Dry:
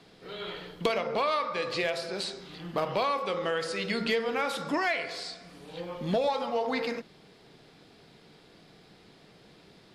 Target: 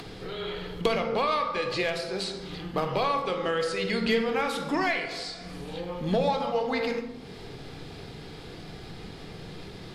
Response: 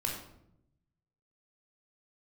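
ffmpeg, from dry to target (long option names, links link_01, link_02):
-filter_complex "[0:a]lowshelf=frequency=110:gain=12,acompressor=mode=upward:threshold=-33dB:ratio=2.5,asplit=2[link_01][link_02];[1:a]atrim=start_sample=2205,asetrate=35721,aresample=44100[link_03];[link_02][link_03]afir=irnorm=-1:irlink=0,volume=-7dB[link_04];[link_01][link_04]amix=inputs=2:normalize=0,volume=-2.5dB"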